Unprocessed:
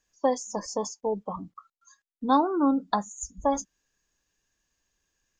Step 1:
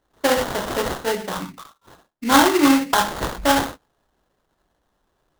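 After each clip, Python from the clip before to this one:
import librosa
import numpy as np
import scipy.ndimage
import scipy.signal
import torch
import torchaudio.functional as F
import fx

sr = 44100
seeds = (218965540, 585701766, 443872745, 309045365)

y = fx.rev_gated(x, sr, seeds[0], gate_ms=160, shape='falling', drr_db=-2.5)
y = fx.dynamic_eq(y, sr, hz=7500.0, q=1.2, threshold_db=-52.0, ratio=4.0, max_db=6)
y = fx.sample_hold(y, sr, seeds[1], rate_hz=2400.0, jitter_pct=20)
y = y * librosa.db_to_amplitude(3.5)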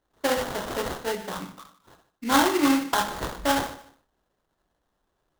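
y = fx.echo_feedback(x, sr, ms=150, feedback_pct=24, wet_db=-17.0)
y = y * librosa.db_to_amplitude(-6.0)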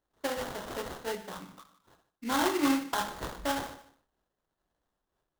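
y = fx.am_noise(x, sr, seeds[2], hz=5.7, depth_pct=55)
y = y * librosa.db_to_amplitude(-4.5)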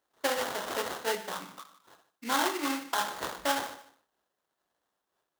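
y = fx.rider(x, sr, range_db=4, speed_s=0.5)
y = fx.highpass(y, sr, hz=560.0, slope=6)
y = y * librosa.db_to_amplitude(3.0)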